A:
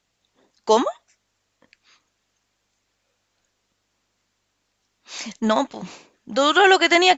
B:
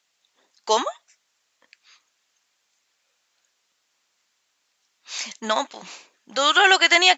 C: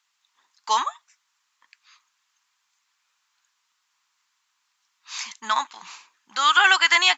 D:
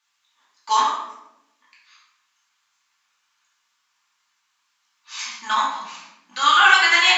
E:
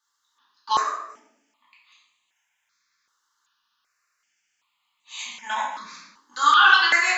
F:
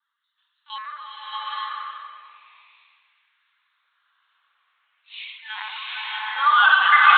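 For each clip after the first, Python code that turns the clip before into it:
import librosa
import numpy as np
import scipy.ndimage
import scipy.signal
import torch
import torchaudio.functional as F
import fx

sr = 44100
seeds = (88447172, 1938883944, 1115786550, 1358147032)

y1 = fx.highpass(x, sr, hz=1400.0, slope=6)
y1 = y1 * 10.0 ** (3.5 / 20.0)
y2 = fx.low_shelf_res(y1, sr, hz=760.0, db=-9.5, q=3.0)
y2 = y2 * 10.0 ** (-2.5 / 20.0)
y3 = fx.room_shoebox(y2, sr, seeds[0], volume_m3=280.0, walls='mixed', distance_m=2.5)
y3 = y3 * 10.0 ** (-4.5 / 20.0)
y4 = fx.phaser_held(y3, sr, hz=2.6, low_hz=660.0, high_hz=5300.0)
y5 = fx.lpc_vocoder(y4, sr, seeds[1], excitation='pitch_kept', order=16)
y5 = fx.filter_lfo_highpass(y5, sr, shape='sine', hz=0.43, low_hz=590.0, high_hz=2400.0, q=1.3)
y5 = fx.rev_bloom(y5, sr, seeds[2], attack_ms=840, drr_db=-7.0)
y5 = y5 * 10.0 ** (-2.0 / 20.0)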